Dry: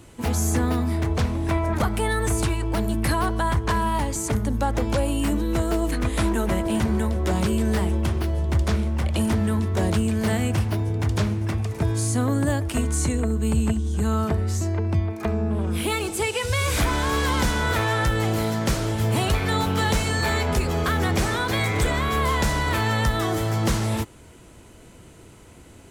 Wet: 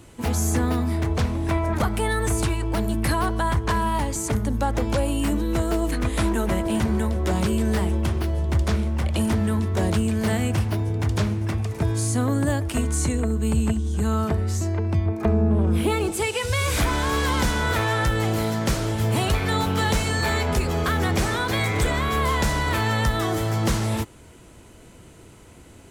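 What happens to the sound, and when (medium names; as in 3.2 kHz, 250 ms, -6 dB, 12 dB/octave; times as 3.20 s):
15.06–16.12 s: tilt shelf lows +5 dB, about 1.3 kHz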